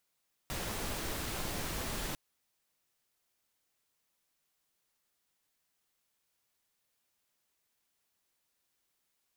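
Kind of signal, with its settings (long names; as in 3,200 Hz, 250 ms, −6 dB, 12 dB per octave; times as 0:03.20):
noise pink, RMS −37.5 dBFS 1.65 s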